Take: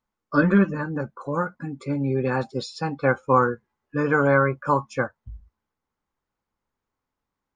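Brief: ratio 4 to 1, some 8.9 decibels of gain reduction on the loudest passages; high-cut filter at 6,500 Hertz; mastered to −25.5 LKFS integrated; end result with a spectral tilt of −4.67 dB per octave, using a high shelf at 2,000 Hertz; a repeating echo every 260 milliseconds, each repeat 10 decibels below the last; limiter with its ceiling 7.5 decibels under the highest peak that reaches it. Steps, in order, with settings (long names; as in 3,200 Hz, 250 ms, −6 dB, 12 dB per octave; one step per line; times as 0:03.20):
low-pass filter 6,500 Hz
high-shelf EQ 2,000 Hz −4.5 dB
downward compressor 4 to 1, threshold −24 dBFS
brickwall limiter −21.5 dBFS
repeating echo 260 ms, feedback 32%, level −10 dB
level +6.5 dB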